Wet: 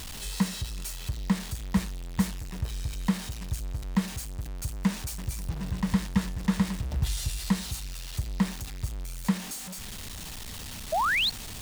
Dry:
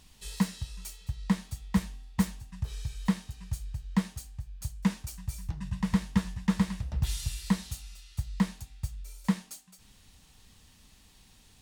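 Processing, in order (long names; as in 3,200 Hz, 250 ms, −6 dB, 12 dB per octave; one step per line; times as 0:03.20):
converter with a step at zero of −34 dBFS
sound drawn into the spectrogram rise, 0:10.92–0:11.30, 590–4,500 Hz −25 dBFS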